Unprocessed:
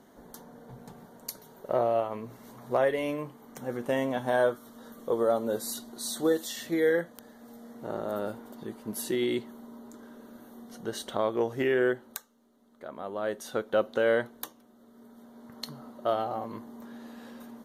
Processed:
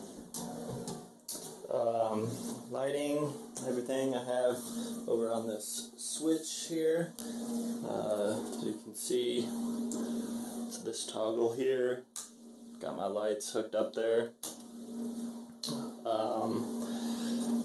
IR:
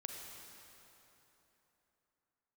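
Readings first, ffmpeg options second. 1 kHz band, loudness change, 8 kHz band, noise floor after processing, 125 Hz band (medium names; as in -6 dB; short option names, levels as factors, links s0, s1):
-6.0 dB, -5.5 dB, +1.5 dB, -54 dBFS, -2.5 dB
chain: -filter_complex "[0:a]aexciter=amount=6.8:drive=4.9:freq=3300,flanger=delay=9.3:depth=8.8:regen=-40:speed=1.3:shape=triangular,equalizer=f=170:w=5:g=4.5,areverse,acompressor=threshold=0.00891:ratio=8,areverse,aphaser=in_gain=1:out_gain=1:delay=3.3:decay=0.33:speed=0.4:type=triangular,acrusher=bits=6:mode=log:mix=0:aa=0.000001,equalizer=f=350:w=0.41:g=10.5[s0];[1:a]atrim=start_sample=2205,atrim=end_sample=3087[s1];[s0][s1]afir=irnorm=-1:irlink=0,volume=2.24" -ar 24000 -c:a aac -b:a 96k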